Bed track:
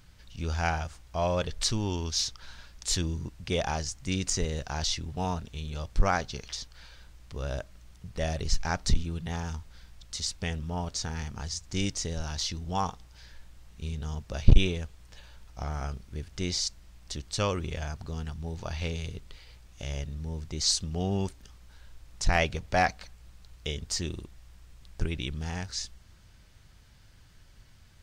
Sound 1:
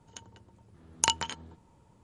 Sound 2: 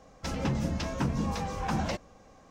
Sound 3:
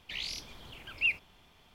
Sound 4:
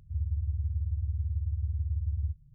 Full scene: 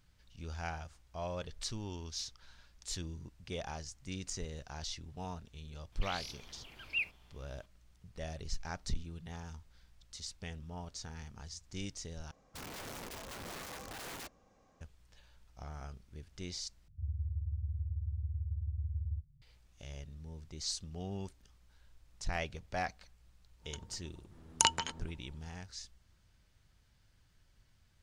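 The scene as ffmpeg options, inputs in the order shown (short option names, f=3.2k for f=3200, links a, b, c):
-filter_complex "[0:a]volume=-12dB[a];[2:a]aeval=exprs='(mod(26.6*val(0)+1,2)-1)/26.6':c=same[b];[a]asplit=3[c][d][e];[c]atrim=end=12.314[f];[b]atrim=end=2.5,asetpts=PTS-STARTPTS,volume=-12dB[g];[d]atrim=start=14.806:end=16.884[h];[4:a]atrim=end=2.54,asetpts=PTS-STARTPTS,volume=-6.5dB[i];[e]atrim=start=19.416[j];[3:a]atrim=end=1.74,asetpts=PTS-STARTPTS,volume=-6dB,afade=t=in:d=0.004:c=hsin,afade=t=out:st=1.736:d=0.004:c=hsin,adelay=5920[k];[1:a]atrim=end=2.03,asetpts=PTS-STARTPTS,volume=-2dB,afade=t=in:d=0.1,afade=t=out:st=1.93:d=0.1,adelay=23570[l];[f][g]acrossfade=d=0.004:c1=hsin:c2=hsin[m];[m][h]acrossfade=d=0.004:c1=hsin:c2=hsin[n];[n][i]acrossfade=d=0.004:c1=hsin:c2=hsin[o];[o][j]acrossfade=d=0.004:c1=hsin:c2=hsin[p];[p][k][l]amix=inputs=3:normalize=0"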